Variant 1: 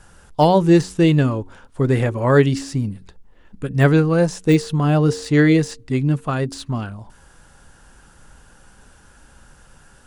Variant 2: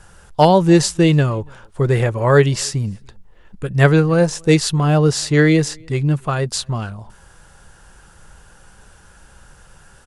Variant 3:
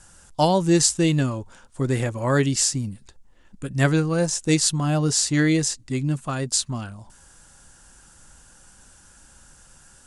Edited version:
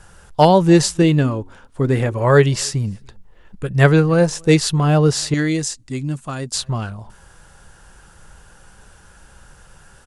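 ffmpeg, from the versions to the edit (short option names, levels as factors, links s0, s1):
-filter_complex "[1:a]asplit=3[s0][s1][s2];[s0]atrim=end=1.022[s3];[0:a]atrim=start=1.018:end=2.132[s4];[s1]atrim=start=2.128:end=5.342[s5];[2:a]atrim=start=5.338:end=6.542[s6];[s2]atrim=start=6.538[s7];[s3][s4]acrossfade=d=0.004:c1=hsin:c2=hsin[s8];[s8][s5]acrossfade=d=0.004:c1=hsin:c2=hsin[s9];[s9][s6]acrossfade=d=0.004:c1=hsin:c2=hsin[s10];[s10][s7]acrossfade=d=0.004:c1=hsin:c2=hsin"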